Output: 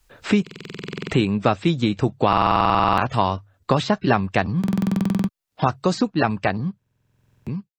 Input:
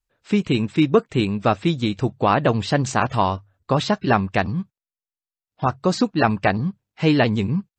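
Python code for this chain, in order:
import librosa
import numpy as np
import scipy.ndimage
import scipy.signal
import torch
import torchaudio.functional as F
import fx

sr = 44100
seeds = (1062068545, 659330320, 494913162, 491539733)

y = fx.fade_out_tail(x, sr, length_s=2.37)
y = fx.buffer_glitch(y, sr, at_s=(0.42, 2.28, 4.59, 6.77), block=2048, repeats=14)
y = fx.band_squash(y, sr, depth_pct=70)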